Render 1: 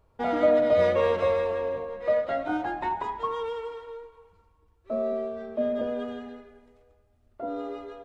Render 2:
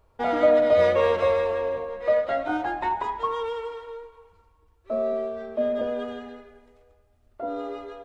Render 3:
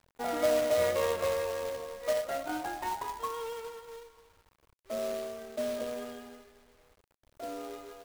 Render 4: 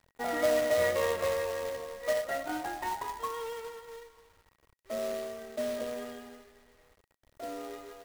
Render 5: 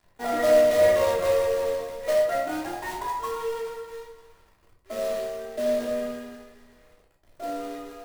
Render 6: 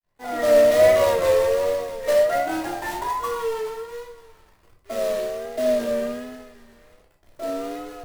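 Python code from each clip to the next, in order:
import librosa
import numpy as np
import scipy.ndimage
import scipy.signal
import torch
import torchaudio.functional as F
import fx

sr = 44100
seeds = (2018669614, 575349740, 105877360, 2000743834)

y1 = fx.peak_eq(x, sr, hz=170.0, db=-5.5, octaves=1.9)
y1 = y1 * 10.0 ** (3.5 / 20.0)
y2 = fx.quant_companded(y1, sr, bits=4)
y2 = y2 * 10.0 ** (-9.0 / 20.0)
y3 = fx.small_body(y2, sr, hz=(1900.0,), ring_ms=85, db=14)
y4 = fx.room_shoebox(y3, sr, seeds[0], volume_m3=460.0, walls='furnished', distance_m=3.1)
y5 = fx.fade_in_head(y4, sr, length_s=0.66)
y5 = fx.vibrato(y5, sr, rate_hz=1.3, depth_cents=67.0)
y5 = y5 * 10.0 ** (4.0 / 20.0)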